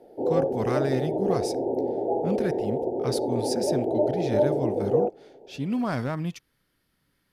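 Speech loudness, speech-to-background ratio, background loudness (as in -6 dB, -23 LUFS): -31.5 LUFS, -5.0 dB, -26.5 LUFS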